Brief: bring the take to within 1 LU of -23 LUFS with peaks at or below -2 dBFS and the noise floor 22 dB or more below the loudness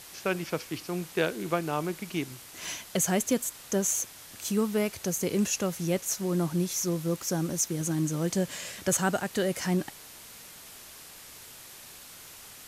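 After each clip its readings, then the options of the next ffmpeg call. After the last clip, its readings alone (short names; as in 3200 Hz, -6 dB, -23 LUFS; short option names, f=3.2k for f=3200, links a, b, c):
noise floor -48 dBFS; noise floor target -52 dBFS; loudness -29.5 LUFS; peak -10.5 dBFS; loudness target -23.0 LUFS
-> -af "afftdn=nr=6:nf=-48"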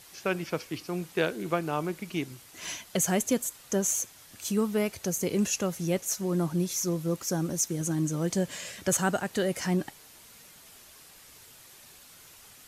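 noise floor -53 dBFS; loudness -29.5 LUFS; peak -10.5 dBFS; loudness target -23.0 LUFS
-> -af "volume=6.5dB"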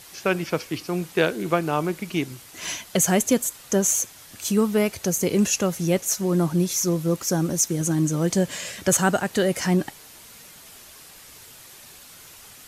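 loudness -23.0 LUFS; peak -4.0 dBFS; noise floor -46 dBFS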